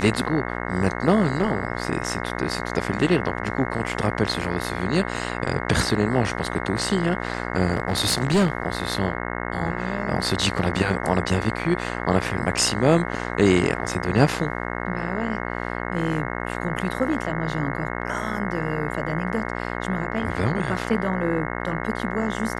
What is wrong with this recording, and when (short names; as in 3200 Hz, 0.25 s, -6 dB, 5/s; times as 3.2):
buzz 60 Hz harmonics 36 -29 dBFS
7.73–8.53 clipped -14 dBFS